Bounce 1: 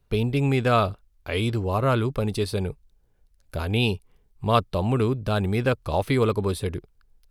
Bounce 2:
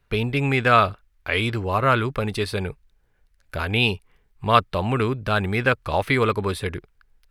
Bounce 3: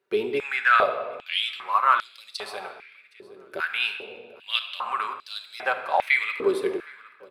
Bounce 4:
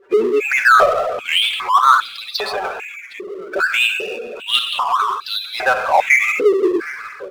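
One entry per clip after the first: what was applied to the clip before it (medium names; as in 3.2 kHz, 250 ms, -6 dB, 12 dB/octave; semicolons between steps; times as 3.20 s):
peaking EQ 1.8 kHz +11.5 dB 1.7 oct; trim -1 dB
feedback delay 766 ms, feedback 29%, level -22 dB; simulated room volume 1900 m³, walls mixed, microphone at 1.1 m; step-sequenced high-pass 2.5 Hz 370–4400 Hz; trim -8 dB
spectral gate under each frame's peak -15 dB strong; power-law waveshaper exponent 0.7; warped record 33 1/3 rpm, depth 100 cents; trim +6 dB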